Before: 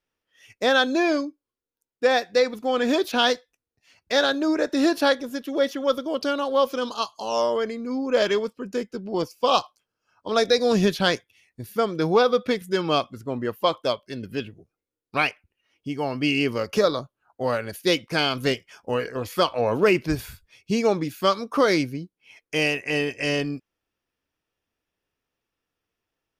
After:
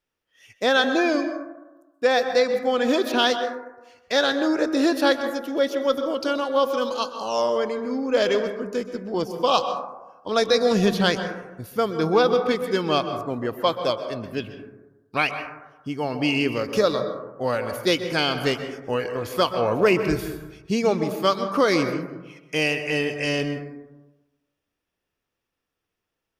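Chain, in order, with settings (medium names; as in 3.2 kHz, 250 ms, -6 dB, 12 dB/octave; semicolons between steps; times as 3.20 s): plate-style reverb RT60 1.1 s, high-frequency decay 0.25×, pre-delay 115 ms, DRR 8 dB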